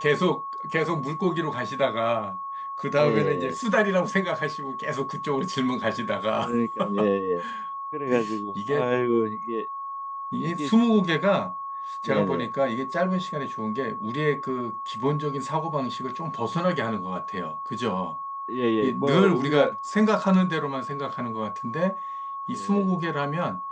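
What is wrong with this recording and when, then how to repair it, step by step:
whistle 1,100 Hz −31 dBFS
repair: notch filter 1,100 Hz, Q 30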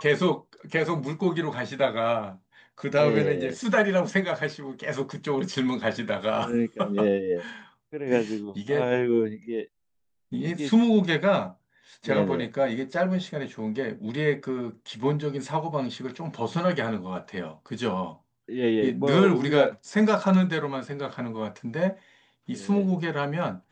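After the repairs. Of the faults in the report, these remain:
none of them is left

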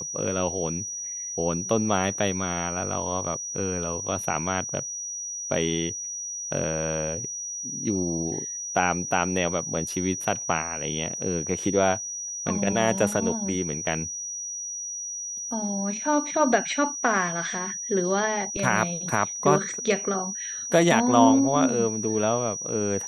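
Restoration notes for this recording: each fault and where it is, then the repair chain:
whistle 5,800 Hz −31 dBFS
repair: notch filter 5,800 Hz, Q 30

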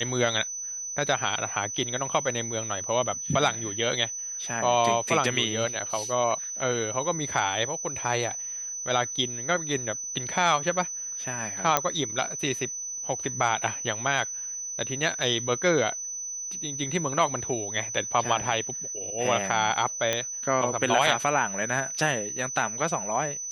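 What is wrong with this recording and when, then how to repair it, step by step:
whistle 6,000 Hz −32 dBFS
0:11.77: click −4 dBFS
0:20.13: click −10 dBFS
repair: click removal
notch filter 6,000 Hz, Q 30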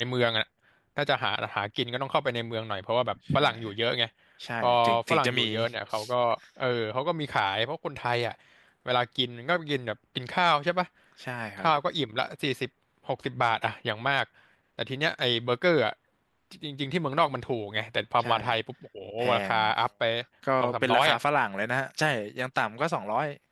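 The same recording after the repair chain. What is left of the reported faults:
none of them is left

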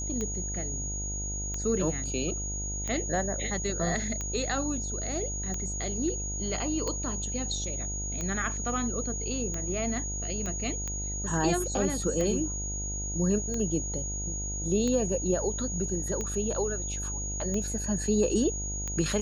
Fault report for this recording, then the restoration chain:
mains buzz 50 Hz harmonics 18 −36 dBFS
scratch tick 45 rpm −20 dBFS
whistle 6,700 Hz −34 dBFS
0:10.46: click −22 dBFS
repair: click removal
hum removal 50 Hz, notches 18
notch filter 6,700 Hz, Q 30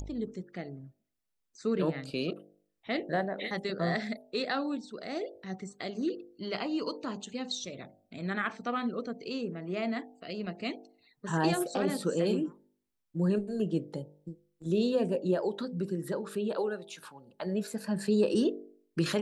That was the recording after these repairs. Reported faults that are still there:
none of them is left

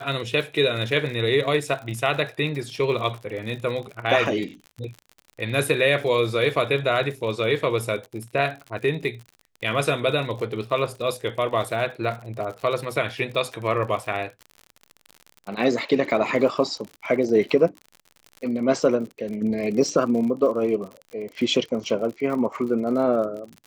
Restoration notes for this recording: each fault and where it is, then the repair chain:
surface crackle 57 per second −32 dBFS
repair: click removal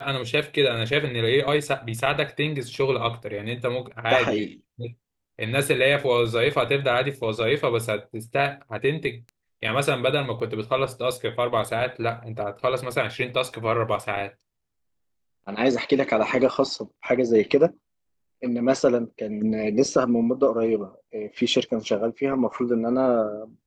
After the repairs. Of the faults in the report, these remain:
none of them is left

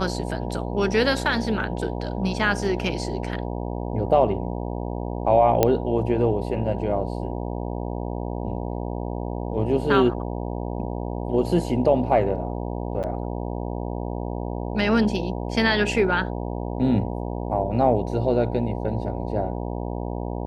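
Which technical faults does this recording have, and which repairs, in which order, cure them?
mains buzz 60 Hz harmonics 16 −29 dBFS
0:05.63: click −4 dBFS
0:13.03–0:13.04: drop-out 8.1 ms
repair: click removal
hum removal 60 Hz, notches 16
repair the gap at 0:13.03, 8.1 ms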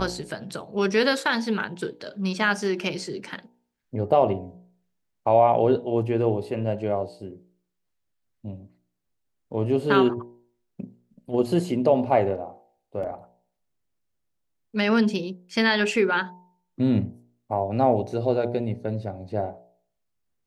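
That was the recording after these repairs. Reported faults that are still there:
0:05.63: click

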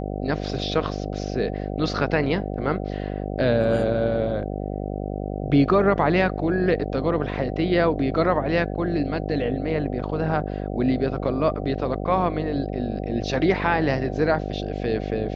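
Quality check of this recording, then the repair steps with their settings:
mains buzz 50 Hz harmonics 15 −29 dBFS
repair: hum removal 50 Hz, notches 15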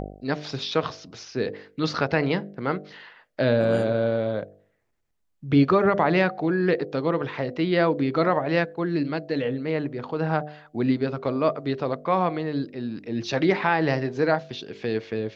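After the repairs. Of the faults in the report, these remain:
none of them is left

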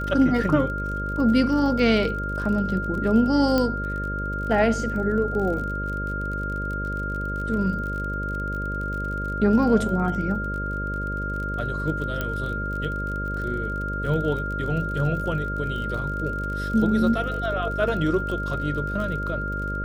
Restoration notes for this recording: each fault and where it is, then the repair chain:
mains buzz 50 Hz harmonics 12 −30 dBFS
surface crackle 38 per second −32 dBFS
whistle 1,400 Hz −29 dBFS
0:03.58: click −10 dBFS
0:12.21: click −13 dBFS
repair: click removal
hum removal 50 Hz, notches 12
notch filter 1,400 Hz, Q 30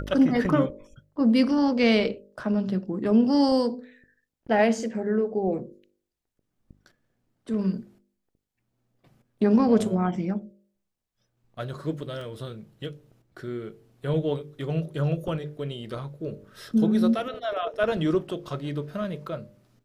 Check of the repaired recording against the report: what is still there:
0:03.58: click
0:12.21: click

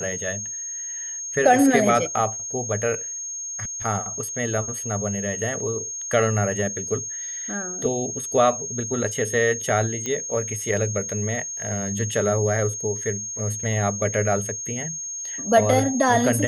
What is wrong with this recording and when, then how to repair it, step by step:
whistle 6,500 Hz −29 dBFS
0:10.06: click −14 dBFS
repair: click removal
notch filter 6,500 Hz, Q 30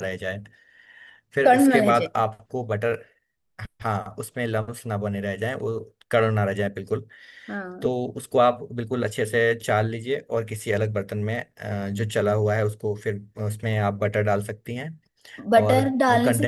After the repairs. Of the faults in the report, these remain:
none of them is left

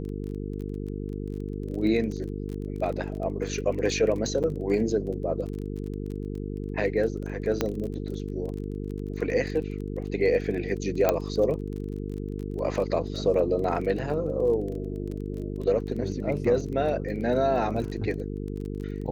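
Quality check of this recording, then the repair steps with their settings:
mains buzz 50 Hz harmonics 9 −33 dBFS
surface crackle 24 per second −34 dBFS
0:04.43–0:04.44: drop-out 8.1 ms
0:07.61: click −10 dBFS
0:11.09: click −8 dBFS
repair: click removal
hum removal 50 Hz, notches 9
repair the gap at 0:04.43, 8.1 ms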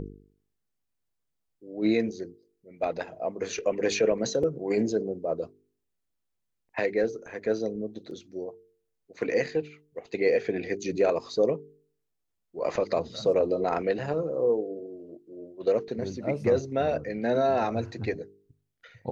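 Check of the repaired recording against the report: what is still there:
none of them is left

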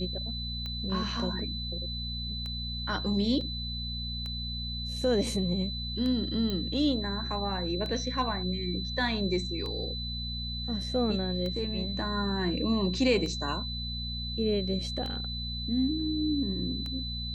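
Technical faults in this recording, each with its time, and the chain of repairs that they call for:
mains hum 60 Hz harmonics 4 −37 dBFS
scratch tick 33 1/3 rpm −24 dBFS
whistle 4,000 Hz −36 dBFS
0:03.41: drop-out 2.1 ms
0:06.50: click −20 dBFS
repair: click removal
hum removal 60 Hz, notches 4
notch filter 4,000 Hz, Q 30
repair the gap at 0:03.41, 2.1 ms

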